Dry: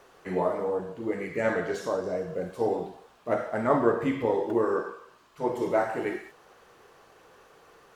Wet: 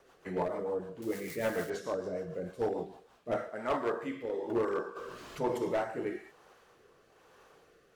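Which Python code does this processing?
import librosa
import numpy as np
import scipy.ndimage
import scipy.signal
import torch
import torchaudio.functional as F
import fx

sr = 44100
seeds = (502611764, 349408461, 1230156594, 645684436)

y = fx.crossing_spikes(x, sr, level_db=-29.5, at=(1.02, 1.7))
y = fx.highpass(y, sr, hz=500.0, slope=6, at=(3.49, 4.43))
y = np.clip(y, -10.0 ** (-20.5 / 20.0), 10.0 ** (-20.5 / 20.0))
y = fx.rotary_switch(y, sr, hz=6.7, then_hz=1.1, switch_at_s=2.82)
y = fx.env_flatten(y, sr, amount_pct=50, at=(4.95, 5.57), fade=0.02)
y = y * 10.0 ** (-3.5 / 20.0)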